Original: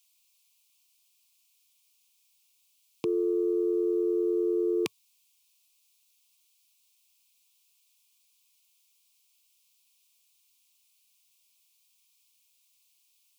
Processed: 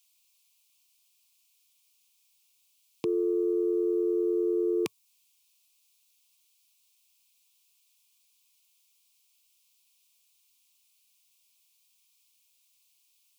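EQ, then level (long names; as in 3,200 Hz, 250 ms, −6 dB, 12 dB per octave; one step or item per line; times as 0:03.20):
dynamic equaliser 3,400 Hz, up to −4 dB, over −55 dBFS, Q 0.89
0.0 dB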